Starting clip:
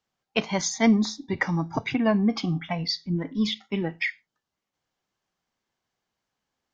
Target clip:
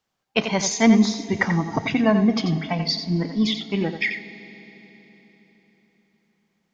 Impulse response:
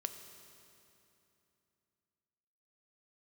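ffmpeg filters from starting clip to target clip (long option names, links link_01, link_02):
-filter_complex "[0:a]asplit=2[link_01][link_02];[1:a]atrim=start_sample=2205,asetrate=30429,aresample=44100,adelay=88[link_03];[link_02][link_03]afir=irnorm=-1:irlink=0,volume=-8.5dB[link_04];[link_01][link_04]amix=inputs=2:normalize=0,volume=3.5dB"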